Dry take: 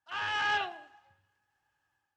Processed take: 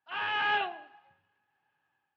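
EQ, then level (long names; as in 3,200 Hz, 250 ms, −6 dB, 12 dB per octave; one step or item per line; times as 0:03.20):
loudspeaker in its box 140–3,700 Hz, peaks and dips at 160 Hz +7 dB, 240 Hz +3 dB, 410 Hz +4 dB, 730 Hz +3 dB, 1,100 Hz +3 dB, 2,500 Hz +4 dB
notch filter 1,200 Hz, Q 26
0.0 dB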